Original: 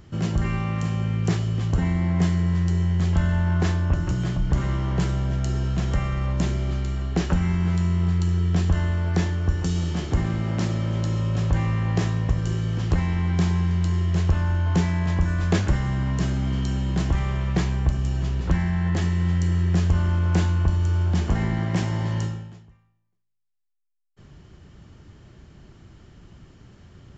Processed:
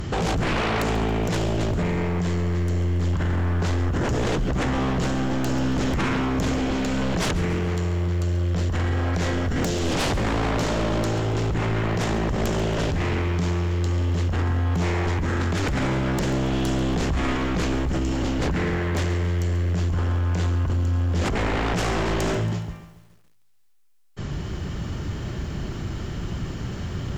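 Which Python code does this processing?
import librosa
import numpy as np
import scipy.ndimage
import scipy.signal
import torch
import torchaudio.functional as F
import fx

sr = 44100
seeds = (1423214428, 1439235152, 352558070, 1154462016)

y = fx.over_compress(x, sr, threshold_db=-28.0, ratio=-1.0)
y = fx.fold_sine(y, sr, drive_db=16, ceiling_db=-13.0)
y = fx.echo_crushed(y, sr, ms=139, feedback_pct=55, bits=7, wet_db=-15)
y = y * 10.0 ** (-7.0 / 20.0)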